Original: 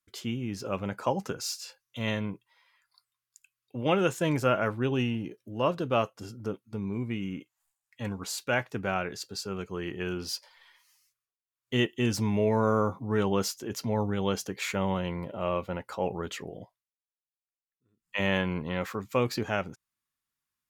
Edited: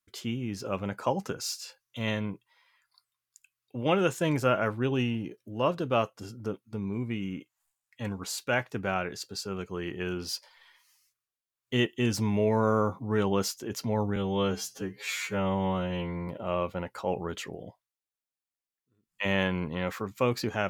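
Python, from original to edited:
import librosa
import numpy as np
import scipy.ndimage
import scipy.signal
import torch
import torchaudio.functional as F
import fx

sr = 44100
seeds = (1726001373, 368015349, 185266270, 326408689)

y = fx.edit(x, sr, fx.stretch_span(start_s=14.16, length_s=1.06, factor=2.0), tone=tone)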